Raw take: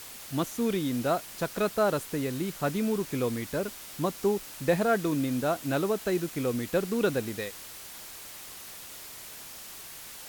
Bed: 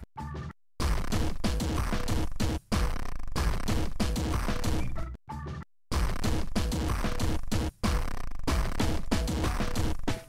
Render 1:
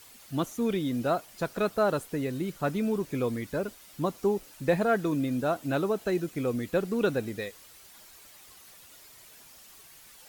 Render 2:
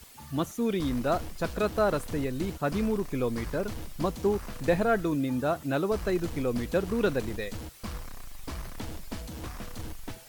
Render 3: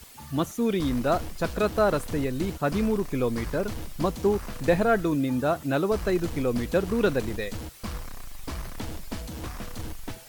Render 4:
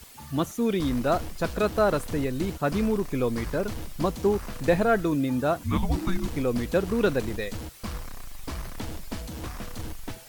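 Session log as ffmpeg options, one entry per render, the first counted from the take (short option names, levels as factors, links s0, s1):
-af "afftdn=nr=10:nf=-44"
-filter_complex "[1:a]volume=0.316[s0];[0:a][s0]amix=inputs=2:normalize=0"
-af "volume=1.41"
-filter_complex "[0:a]asettb=1/sr,asplit=3[s0][s1][s2];[s0]atrim=end=5.594[s3];[s1]atrim=start=5.59:end=6.28,asetpts=PTS-STARTPTS,afade=t=in:d=0.004:c=qsin,afade=t=out:st=0.686:d=0.004:c=qsin,afreqshift=-370[s4];[s2]atrim=start=6.276[s5];[s3][s4]acrossfade=d=0.004:c1=hsin:c2=qsin[s6];[s6][s5]acrossfade=d=0.004:c1=qsin:c2=hsin"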